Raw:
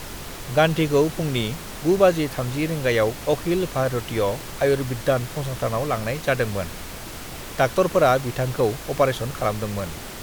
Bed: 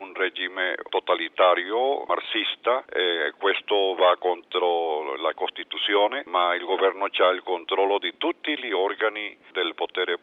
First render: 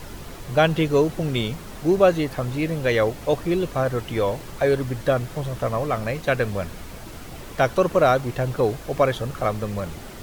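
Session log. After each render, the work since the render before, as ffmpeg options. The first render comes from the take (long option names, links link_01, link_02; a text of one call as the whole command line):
ffmpeg -i in.wav -af "afftdn=noise_reduction=7:noise_floor=-36" out.wav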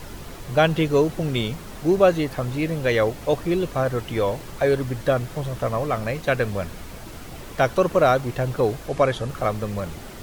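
ffmpeg -i in.wav -filter_complex "[0:a]asettb=1/sr,asplit=3[link_01][link_02][link_03];[link_01]atrim=end=8.884[link_04];[link_02]atrim=start=8.88:end=9.29,asetpts=PTS-STARTPTS,afade=type=in:duration=0.004:curve=qsin,afade=type=out:start_time=0.406:duration=0.004:curve=qsin,lowpass=frequency=11000:width=0.5412,lowpass=frequency=11000:width=1.3066[link_05];[link_03]atrim=start=9.286[link_06];[link_04][link_05]acrossfade=duration=0.004:curve1=hsin:curve2=qsin[link_07];[link_07][link_06]acrossfade=duration=0.004:curve1=qsin:curve2=hsin" out.wav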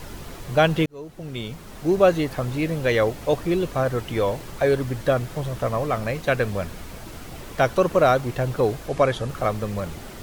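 ffmpeg -i in.wav -filter_complex "[0:a]asplit=2[link_01][link_02];[link_01]atrim=end=0.86,asetpts=PTS-STARTPTS,afade=type=out:start_time=0.856:duration=0.004:curve=hsin[link_03];[link_02]atrim=start=0.86,asetpts=PTS-STARTPTS,afade=type=in:duration=1.22[link_04];[link_03][link_04]concat=n=2:v=0:a=1" out.wav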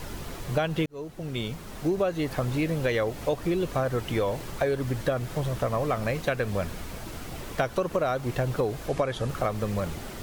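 ffmpeg -i in.wav -af "acompressor=threshold=-22dB:ratio=12" out.wav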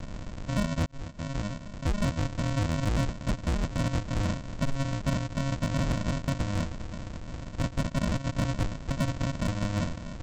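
ffmpeg -i in.wav -af "aresample=16000,acrusher=samples=39:mix=1:aa=0.000001,aresample=44100,volume=22dB,asoftclip=hard,volume=-22dB" out.wav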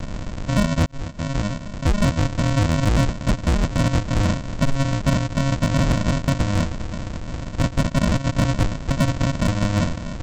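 ffmpeg -i in.wav -af "volume=9dB" out.wav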